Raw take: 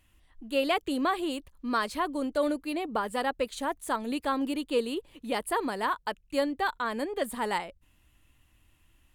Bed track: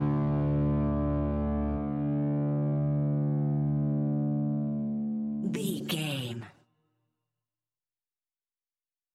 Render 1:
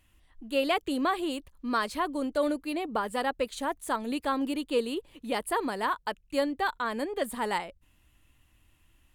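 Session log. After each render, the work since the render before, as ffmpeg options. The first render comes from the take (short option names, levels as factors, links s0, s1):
-af anull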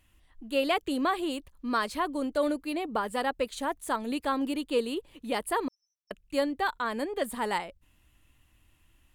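-filter_complex "[0:a]asettb=1/sr,asplit=3[s0][s1][s2];[s0]atrim=end=5.684[s3];[s1]atrim=start=5.68:end=6.11,asetpts=PTS-STARTPTS,afade=t=in:d=0.004:c=qsin,afade=t=out:st=0.426:d=0.004:c=qsin,asuperpass=centerf=5700:order=20:qfactor=6.5[s4];[s2]atrim=start=6.106[s5];[s3][s4]acrossfade=d=0.004:c1=hsin:c2=qsin[s6];[s6][s5]acrossfade=d=0.004:c1=qsin:c2=hsin"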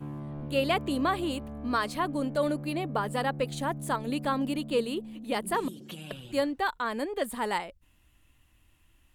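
-filter_complex "[1:a]volume=0.282[s0];[0:a][s0]amix=inputs=2:normalize=0"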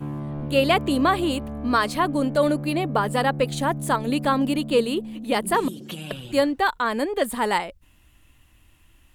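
-af "volume=2.37"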